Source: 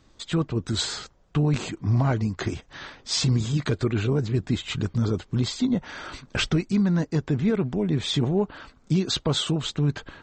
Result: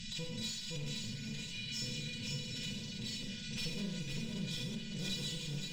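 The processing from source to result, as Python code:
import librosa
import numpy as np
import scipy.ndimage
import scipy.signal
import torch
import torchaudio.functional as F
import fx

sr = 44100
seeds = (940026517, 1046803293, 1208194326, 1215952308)

y = fx.bin_compress(x, sr, power=0.4)
y = fx.dereverb_blind(y, sr, rt60_s=1.7)
y = scipy.signal.sosfilt(scipy.signal.cheby2(4, 40, [360.0, 1200.0], 'bandstop', fs=sr, output='sos'), y)
y = fx.spec_repair(y, sr, seeds[0], start_s=2.73, length_s=0.92, low_hz=2100.0, high_hz=4900.0, source='after')
y = y + 0.76 * np.pad(y, (int(5.4 * sr / 1000.0), 0))[:len(y)]
y = fx.stretch_vocoder(y, sr, factor=0.56)
y = fx.clip_asym(y, sr, top_db=-21.0, bottom_db=-13.0)
y = fx.comb_fb(y, sr, f0_hz=490.0, decay_s=0.16, harmonics='all', damping=0.0, mix_pct=90)
y = y + 10.0 ** (-5.0 / 20.0) * np.pad(y, (int(516 * sr / 1000.0), 0))[:len(y)]
y = fx.rev_schroeder(y, sr, rt60_s=0.76, comb_ms=28, drr_db=-1.5)
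y = fx.pre_swell(y, sr, db_per_s=37.0)
y = y * 10.0 ** (-7.0 / 20.0)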